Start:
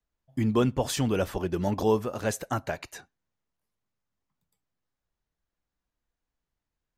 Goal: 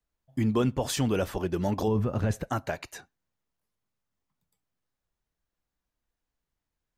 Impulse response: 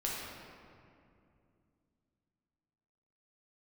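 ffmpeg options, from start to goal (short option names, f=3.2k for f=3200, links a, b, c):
-filter_complex "[0:a]asplit=3[a][b][c];[a]afade=t=out:st=1.87:d=0.02[d];[b]bass=f=250:g=13,treble=f=4k:g=-10,afade=t=in:st=1.87:d=0.02,afade=t=out:st=2.47:d=0.02[e];[c]afade=t=in:st=2.47:d=0.02[f];[d][e][f]amix=inputs=3:normalize=0,alimiter=limit=-17dB:level=0:latency=1:release=20"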